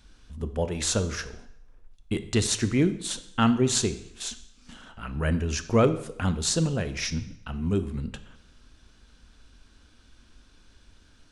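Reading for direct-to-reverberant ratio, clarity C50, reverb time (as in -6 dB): 11.0 dB, 13.5 dB, 0.80 s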